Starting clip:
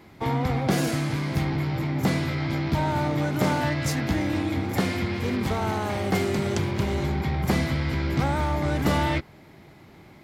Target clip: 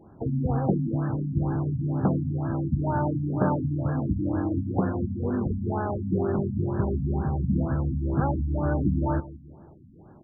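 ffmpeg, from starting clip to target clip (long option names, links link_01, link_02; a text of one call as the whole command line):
ffmpeg -i in.wav -filter_complex "[0:a]adynamicsmooth=sensitivity=6.5:basefreq=1500,asplit=2[link_01][link_02];[link_02]adelay=166,lowpass=frequency=1400:poles=1,volume=-18.5dB,asplit=2[link_03][link_04];[link_04]adelay=166,lowpass=frequency=1400:poles=1,volume=0.51,asplit=2[link_05][link_06];[link_06]adelay=166,lowpass=frequency=1400:poles=1,volume=0.51,asplit=2[link_07][link_08];[link_08]adelay=166,lowpass=frequency=1400:poles=1,volume=0.51[link_09];[link_01][link_03][link_05][link_07][link_09]amix=inputs=5:normalize=0,afftfilt=real='re*lt(b*sr/1024,280*pow(1800/280,0.5+0.5*sin(2*PI*2.1*pts/sr)))':imag='im*lt(b*sr/1024,280*pow(1800/280,0.5+0.5*sin(2*PI*2.1*pts/sr)))':win_size=1024:overlap=0.75" out.wav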